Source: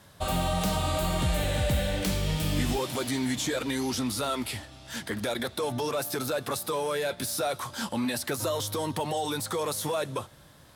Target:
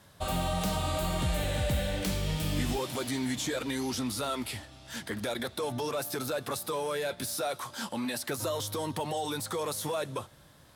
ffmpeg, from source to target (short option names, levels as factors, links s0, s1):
-filter_complex "[0:a]asettb=1/sr,asplit=3[s0][s1][s2];[s0]atrim=end=7.354[s3];[s1]atrim=start=7.35:end=8.29,asetpts=PTS-STARTPTS,afade=t=in:d=0.004:c=qsin,afade=t=out:st=0.936:d=0.004:c=qsin,highpass=f=170:p=1[s4];[s2]atrim=start=8.286[s5];[s3][s4]acrossfade=d=0.004:c1=hsin:c2=qsin[s6];[s6][s5]acrossfade=d=0.004:c1=qsin:c2=hsin,volume=0.708"